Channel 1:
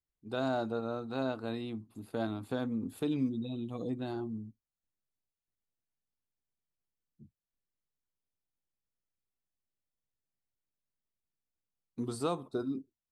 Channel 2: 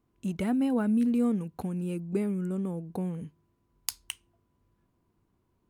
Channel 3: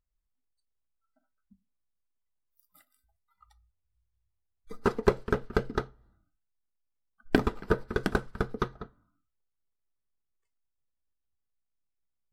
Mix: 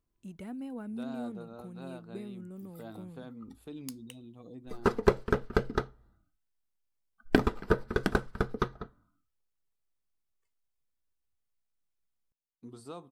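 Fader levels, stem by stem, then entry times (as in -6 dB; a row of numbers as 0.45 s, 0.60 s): -11.5 dB, -13.5 dB, 0.0 dB; 0.65 s, 0.00 s, 0.00 s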